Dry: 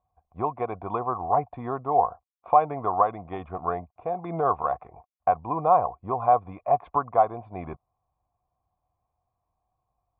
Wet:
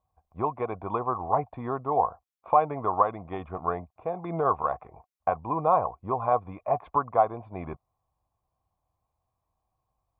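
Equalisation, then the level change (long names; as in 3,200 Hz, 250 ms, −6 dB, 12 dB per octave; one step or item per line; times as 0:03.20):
notch filter 720 Hz, Q 12
0.0 dB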